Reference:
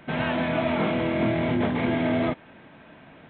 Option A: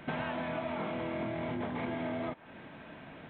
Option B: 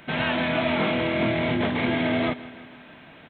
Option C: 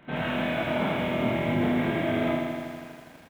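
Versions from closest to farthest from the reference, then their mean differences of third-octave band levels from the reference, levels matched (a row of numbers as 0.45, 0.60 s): B, A, C; 2.0, 3.5, 6.5 dB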